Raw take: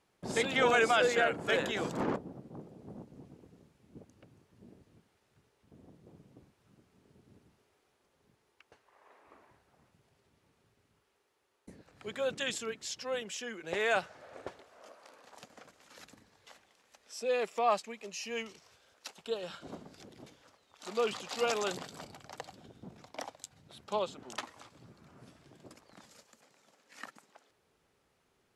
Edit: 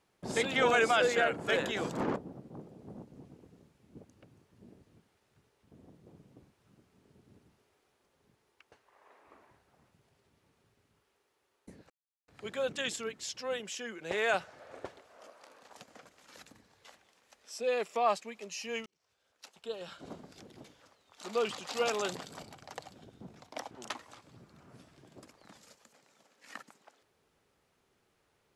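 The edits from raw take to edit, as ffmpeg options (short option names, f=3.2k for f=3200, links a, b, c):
-filter_complex "[0:a]asplit=4[a][b][c][d];[a]atrim=end=11.9,asetpts=PTS-STARTPTS,afade=t=out:st=11.896:d=0.004:c=hsin,apad=pad_dur=0.38[e];[b]atrim=start=11.9:end=18.48,asetpts=PTS-STARTPTS,afade=t=in:d=0.004:c=hsin,afade=t=out:st=6.576:d=0.004:c=hsin[f];[c]atrim=start=18.48:end=23.332,asetpts=PTS-STARTPTS,afade=t=in:d=1.31[g];[d]atrim=start=24.188[h];[e][f][g]concat=n=3:v=0:a=1[i];[i][h]acrossfade=d=0.004:c1=hsin:c2=hsin"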